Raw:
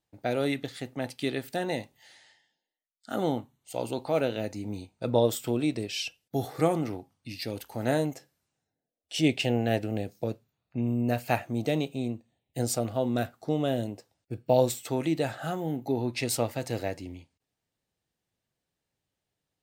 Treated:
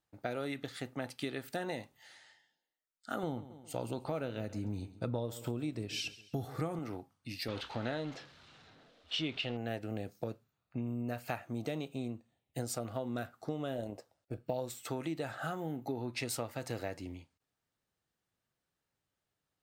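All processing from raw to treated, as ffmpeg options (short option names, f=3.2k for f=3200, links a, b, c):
-filter_complex "[0:a]asettb=1/sr,asplit=3[a][b][c];[a]atrim=end=3.234[d];[b]atrim=start=3.23:end=6.79,asetpts=PTS-STARTPTS,afade=t=in:d=0.004:c=qsin,afade=t=out:st=3.556:d=0.004:c=qsin,lowshelf=f=200:g=11,aecho=1:1:135|270|405:0.106|0.0455|0.0196,atrim=end_sample=156996[e];[c]atrim=start=6.786[f];[d][e]acrossfade=d=0.004:c1=hsin:c2=qsin[g];[g][f]acrossfade=d=0.004:c1=qsin:c2=hsin,asettb=1/sr,asplit=3[h][i][j];[h]atrim=end=7.484[k];[i]atrim=start=7.48:end=9.57,asetpts=PTS-STARTPTS,afade=t=in:d=0.004:c=qsin,afade=t=out:st=2.086:d=0.004:c=qsin,aeval=exprs='val(0)+0.5*0.0133*sgn(val(0))':c=same,agate=range=-33dB:threshold=-37dB:ratio=3:release=100:detection=peak,lowpass=f=3.7k:t=q:w=2.4[l];[j]atrim=start=9.566[m];[k][l]acrossfade=d=0.004:c1=hsin:c2=qsin[n];[n][m]acrossfade=d=0.004:c1=qsin:c2=hsin,asettb=1/sr,asplit=3[o][p][q];[o]atrim=end=13.754[r];[p]atrim=start=13.75:end=14.44,asetpts=PTS-STARTPTS,afade=t=in:d=0.004:c=qsin,afade=t=out:st=0.686:d=0.004:c=qsin,equalizer=f=600:t=o:w=0.77:g=8.5,tremolo=f=140:d=0.4[s];[q]atrim=start=14.436[t];[r][s]acrossfade=d=0.004:c1=hsin:c2=qsin[u];[u][t]acrossfade=d=0.004:c1=qsin:c2=hsin,equalizer=f=1.3k:w=1.9:g=7,acompressor=threshold=-30dB:ratio=6,volume=-3.5dB"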